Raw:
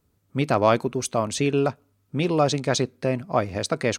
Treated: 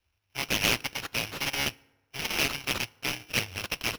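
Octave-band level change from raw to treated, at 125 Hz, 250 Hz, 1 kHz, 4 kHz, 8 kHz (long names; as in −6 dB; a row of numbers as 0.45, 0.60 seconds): −13.0, −13.5, −11.5, +4.0, −2.0 decibels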